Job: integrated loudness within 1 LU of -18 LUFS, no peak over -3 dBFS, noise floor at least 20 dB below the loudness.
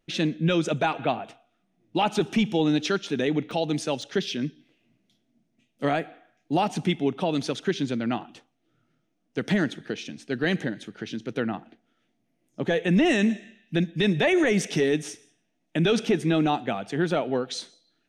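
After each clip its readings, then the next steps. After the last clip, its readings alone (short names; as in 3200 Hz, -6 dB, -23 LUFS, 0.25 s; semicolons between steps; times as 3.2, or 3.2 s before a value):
dropouts 3; longest dropout 2.2 ms; loudness -26.0 LUFS; peak -13.5 dBFS; loudness target -18.0 LUFS
-> interpolate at 3.51/4.02/17.11, 2.2 ms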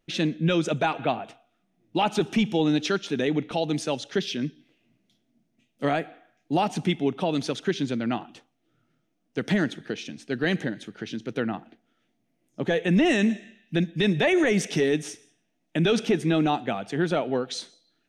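dropouts 0; loudness -26.0 LUFS; peak -13.0 dBFS; loudness target -18.0 LUFS
-> gain +8 dB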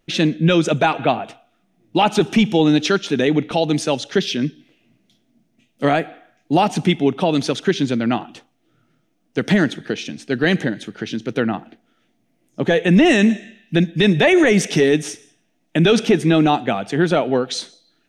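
loudness -18.0 LUFS; peak -5.0 dBFS; noise floor -66 dBFS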